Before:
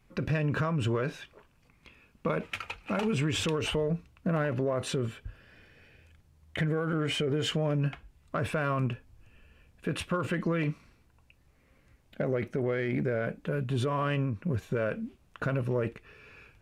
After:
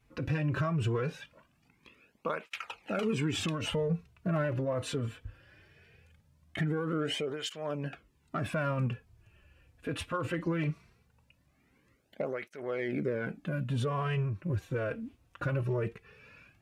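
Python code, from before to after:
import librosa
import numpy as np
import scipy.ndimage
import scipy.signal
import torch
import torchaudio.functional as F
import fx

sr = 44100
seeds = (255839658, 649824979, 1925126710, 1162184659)

y = fx.flanger_cancel(x, sr, hz=0.2, depth_ms=5.5)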